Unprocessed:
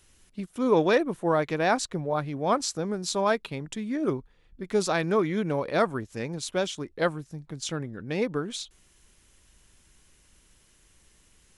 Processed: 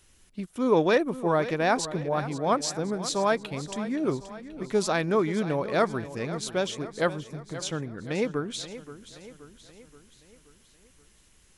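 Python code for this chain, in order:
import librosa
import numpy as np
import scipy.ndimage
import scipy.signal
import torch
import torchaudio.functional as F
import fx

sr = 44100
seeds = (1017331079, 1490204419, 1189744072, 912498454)

y = fx.echo_feedback(x, sr, ms=527, feedback_pct=53, wet_db=-14.0)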